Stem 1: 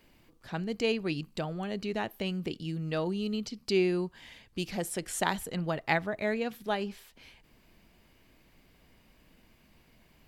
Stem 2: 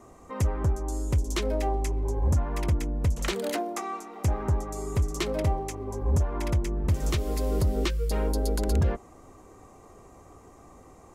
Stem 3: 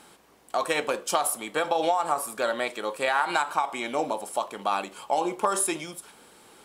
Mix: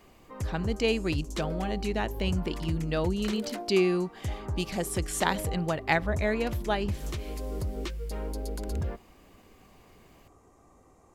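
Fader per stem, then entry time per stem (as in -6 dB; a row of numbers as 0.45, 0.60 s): +2.5 dB, -8.0 dB, off; 0.00 s, 0.00 s, off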